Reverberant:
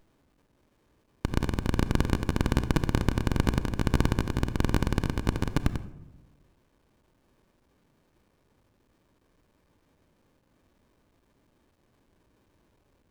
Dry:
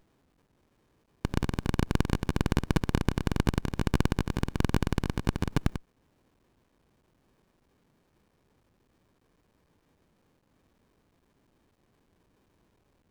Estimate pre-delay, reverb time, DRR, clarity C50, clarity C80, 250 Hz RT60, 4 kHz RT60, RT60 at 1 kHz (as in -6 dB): 3 ms, 1.0 s, 11.0 dB, 13.5 dB, 16.0 dB, 1.3 s, 0.50 s, 0.95 s